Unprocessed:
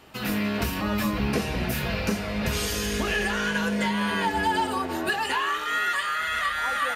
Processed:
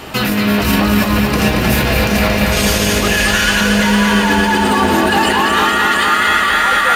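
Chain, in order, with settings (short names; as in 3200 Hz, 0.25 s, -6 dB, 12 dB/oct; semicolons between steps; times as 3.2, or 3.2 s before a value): 3.16–3.61 passive tone stack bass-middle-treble 10-0-10; negative-ratio compressor -31 dBFS, ratio -1; maximiser +22.5 dB; lo-fi delay 0.228 s, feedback 80%, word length 6-bit, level -5 dB; gain -5.5 dB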